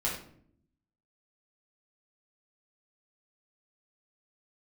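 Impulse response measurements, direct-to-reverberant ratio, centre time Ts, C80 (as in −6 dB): −5.5 dB, 35 ms, 9.0 dB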